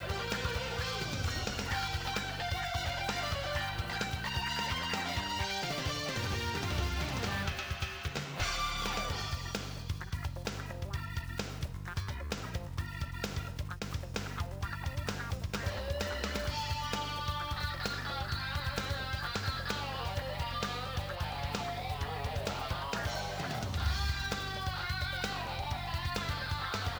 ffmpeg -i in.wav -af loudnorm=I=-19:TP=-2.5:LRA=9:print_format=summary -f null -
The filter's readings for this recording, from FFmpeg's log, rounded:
Input Integrated:    -35.9 LUFS
Input True Peak:     -17.8 dBTP
Input LRA:             4.4 LU
Input Threshold:     -45.9 LUFS